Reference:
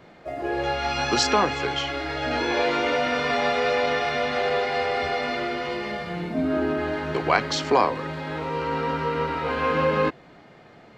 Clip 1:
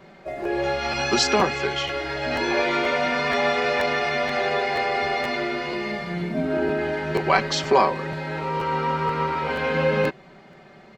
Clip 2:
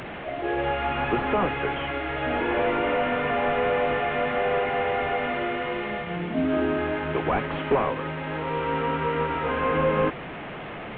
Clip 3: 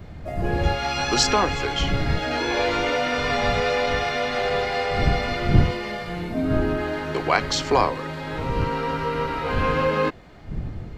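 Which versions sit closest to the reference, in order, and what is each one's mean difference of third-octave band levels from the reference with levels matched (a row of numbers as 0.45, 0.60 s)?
1, 3, 2; 2.0, 3.0, 6.0 dB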